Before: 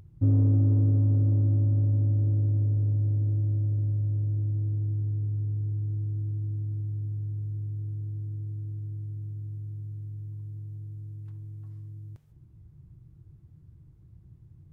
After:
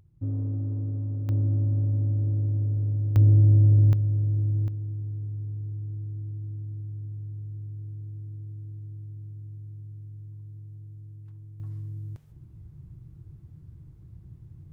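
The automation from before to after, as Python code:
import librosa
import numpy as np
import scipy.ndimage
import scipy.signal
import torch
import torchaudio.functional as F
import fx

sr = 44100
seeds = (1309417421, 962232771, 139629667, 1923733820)

y = fx.gain(x, sr, db=fx.steps((0.0, -8.0), (1.29, -1.0), (3.16, 9.5), (3.93, 3.0), (4.68, -4.0), (11.6, 5.5)))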